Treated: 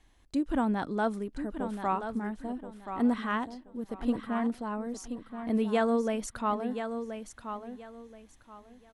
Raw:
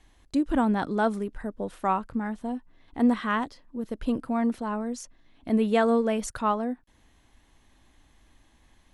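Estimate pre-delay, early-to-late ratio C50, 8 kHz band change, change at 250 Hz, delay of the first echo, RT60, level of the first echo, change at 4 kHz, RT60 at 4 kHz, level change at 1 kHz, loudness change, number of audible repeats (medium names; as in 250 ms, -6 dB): no reverb, no reverb, -4.0 dB, -4.0 dB, 1028 ms, no reverb, -8.5 dB, -4.0 dB, no reverb, -4.0 dB, -4.5 dB, 3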